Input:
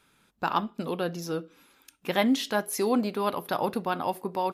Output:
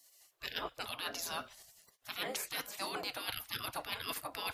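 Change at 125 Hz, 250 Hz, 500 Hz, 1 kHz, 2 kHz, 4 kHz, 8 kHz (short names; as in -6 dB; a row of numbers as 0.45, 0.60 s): -17.0, -23.5, -17.5, -13.5, -6.0, -2.0, -4.0 dB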